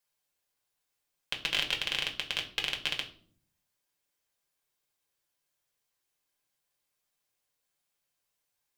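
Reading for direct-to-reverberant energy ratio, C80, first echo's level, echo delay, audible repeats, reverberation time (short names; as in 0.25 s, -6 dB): 1.0 dB, 16.0 dB, none, none, none, 0.55 s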